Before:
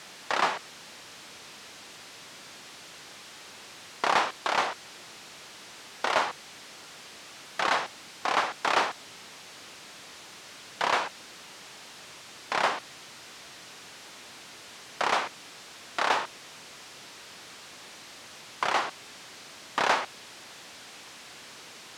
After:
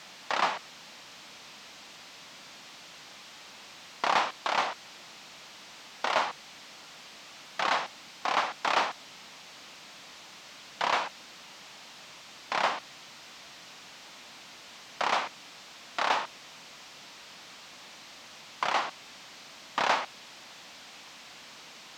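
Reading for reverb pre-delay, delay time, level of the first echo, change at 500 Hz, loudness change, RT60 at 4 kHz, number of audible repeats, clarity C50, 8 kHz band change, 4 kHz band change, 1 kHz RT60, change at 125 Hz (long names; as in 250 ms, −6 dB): no reverb audible, no echo audible, no echo audible, −2.5 dB, −1.5 dB, no reverb audible, no echo audible, no reverb audible, −3.5 dB, −1.0 dB, no reverb audible, −3.0 dB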